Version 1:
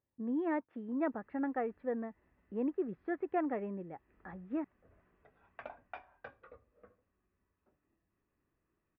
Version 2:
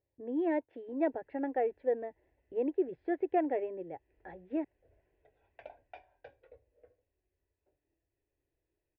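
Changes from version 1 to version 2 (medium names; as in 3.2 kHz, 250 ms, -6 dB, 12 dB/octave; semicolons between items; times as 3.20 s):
speech +6.5 dB; master: add static phaser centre 500 Hz, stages 4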